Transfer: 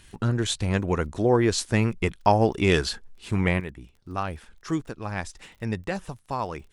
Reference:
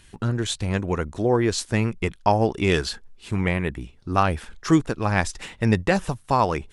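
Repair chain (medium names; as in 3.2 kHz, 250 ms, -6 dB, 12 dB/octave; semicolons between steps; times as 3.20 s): de-click; gain correction +9.5 dB, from 3.60 s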